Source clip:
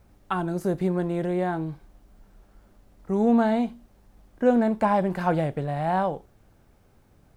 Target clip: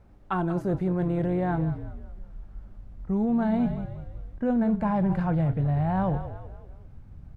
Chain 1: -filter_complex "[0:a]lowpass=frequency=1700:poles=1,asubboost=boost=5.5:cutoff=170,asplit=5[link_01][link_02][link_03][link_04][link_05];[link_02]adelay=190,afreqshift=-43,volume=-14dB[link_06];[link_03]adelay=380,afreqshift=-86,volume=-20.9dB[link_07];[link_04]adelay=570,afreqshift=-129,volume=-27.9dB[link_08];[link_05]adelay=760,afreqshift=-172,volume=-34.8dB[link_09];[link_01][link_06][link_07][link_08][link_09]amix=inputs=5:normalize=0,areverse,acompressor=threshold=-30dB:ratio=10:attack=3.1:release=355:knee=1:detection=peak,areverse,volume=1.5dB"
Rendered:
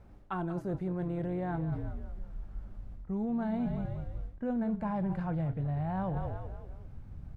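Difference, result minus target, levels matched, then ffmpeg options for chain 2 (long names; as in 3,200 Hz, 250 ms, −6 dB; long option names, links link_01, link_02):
downward compressor: peak gain reduction +8 dB
-filter_complex "[0:a]lowpass=frequency=1700:poles=1,asubboost=boost=5.5:cutoff=170,asplit=5[link_01][link_02][link_03][link_04][link_05];[link_02]adelay=190,afreqshift=-43,volume=-14dB[link_06];[link_03]adelay=380,afreqshift=-86,volume=-20.9dB[link_07];[link_04]adelay=570,afreqshift=-129,volume=-27.9dB[link_08];[link_05]adelay=760,afreqshift=-172,volume=-34.8dB[link_09];[link_01][link_06][link_07][link_08][link_09]amix=inputs=5:normalize=0,areverse,acompressor=threshold=-21dB:ratio=10:attack=3.1:release=355:knee=1:detection=peak,areverse,volume=1.5dB"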